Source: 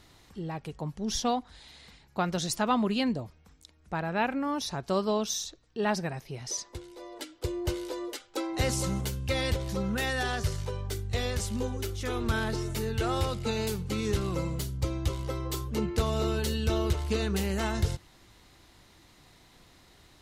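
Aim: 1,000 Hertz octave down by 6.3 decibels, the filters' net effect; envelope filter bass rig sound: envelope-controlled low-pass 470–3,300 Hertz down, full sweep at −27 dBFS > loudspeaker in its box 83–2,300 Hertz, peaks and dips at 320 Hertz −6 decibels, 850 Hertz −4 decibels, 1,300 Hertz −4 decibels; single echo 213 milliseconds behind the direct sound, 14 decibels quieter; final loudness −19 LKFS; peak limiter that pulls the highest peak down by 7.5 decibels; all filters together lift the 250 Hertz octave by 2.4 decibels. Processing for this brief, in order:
parametric band 250 Hz +5 dB
parametric band 1,000 Hz −5 dB
brickwall limiter −21 dBFS
single-tap delay 213 ms −14 dB
envelope-controlled low-pass 470–3,300 Hz down, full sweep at −27 dBFS
loudspeaker in its box 83–2,300 Hz, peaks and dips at 320 Hz −6 dB, 850 Hz −4 dB, 1,300 Hz −4 dB
level +10 dB

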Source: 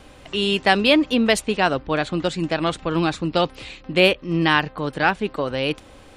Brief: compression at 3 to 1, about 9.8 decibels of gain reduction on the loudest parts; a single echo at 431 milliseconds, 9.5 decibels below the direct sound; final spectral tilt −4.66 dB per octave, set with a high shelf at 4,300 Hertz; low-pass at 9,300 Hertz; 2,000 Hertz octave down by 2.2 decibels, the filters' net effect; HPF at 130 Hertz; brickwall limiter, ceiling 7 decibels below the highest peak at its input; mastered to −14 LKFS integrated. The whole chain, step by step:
high-pass filter 130 Hz
low-pass filter 9,300 Hz
parametric band 2,000 Hz −4.5 dB
high-shelf EQ 4,300 Hz +6.5 dB
downward compressor 3 to 1, threshold −25 dBFS
brickwall limiter −18 dBFS
single-tap delay 431 ms −9.5 dB
level +15.5 dB

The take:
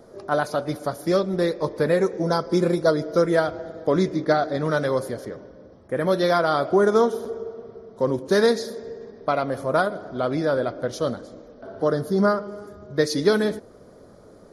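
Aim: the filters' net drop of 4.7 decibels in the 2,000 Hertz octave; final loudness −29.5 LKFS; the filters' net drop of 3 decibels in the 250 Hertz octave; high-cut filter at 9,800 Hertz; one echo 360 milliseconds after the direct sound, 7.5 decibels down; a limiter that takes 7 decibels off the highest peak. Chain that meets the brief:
low-pass filter 9,800 Hz
parametric band 250 Hz −4.5 dB
parametric band 2,000 Hz −7 dB
brickwall limiter −15 dBFS
single-tap delay 360 ms −7.5 dB
level −3 dB

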